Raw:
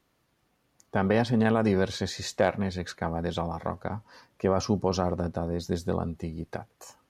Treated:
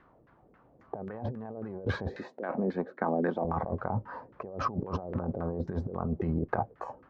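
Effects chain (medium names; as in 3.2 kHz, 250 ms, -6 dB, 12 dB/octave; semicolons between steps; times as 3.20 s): LFO low-pass saw down 3.7 Hz 380–1700 Hz; 2.16–3.45 s: ladder high-pass 200 Hz, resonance 40%; compressor with a negative ratio -35 dBFS, ratio -1; trim +1 dB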